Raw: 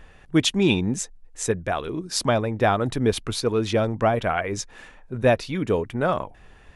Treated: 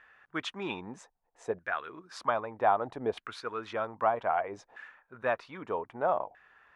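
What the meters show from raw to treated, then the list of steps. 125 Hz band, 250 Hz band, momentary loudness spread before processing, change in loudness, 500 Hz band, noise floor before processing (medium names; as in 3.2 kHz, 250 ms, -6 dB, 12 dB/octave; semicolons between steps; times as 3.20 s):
-23.0 dB, -18.0 dB, 9 LU, -9.5 dB, -9.5 dB, -50 dBFS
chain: bass shelf 99 Hz +5.5 dB; LFO band-pass saw down 0.63 Hz 700–1600 Hz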